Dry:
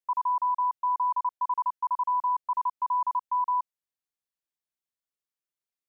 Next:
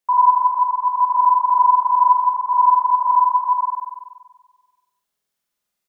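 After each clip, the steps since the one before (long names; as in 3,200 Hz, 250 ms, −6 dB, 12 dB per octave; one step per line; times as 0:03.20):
parametric band 780 Hz +2.5 dB
double-tracking delay 43 ms −8 dB
on a send: flutter between parallel walls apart 8.2 metres, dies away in 1.4 s
on the sum: level +8.5 dB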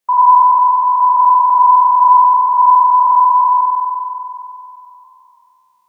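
peak hold with a decay on every bin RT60 2.86 s
level +3 dB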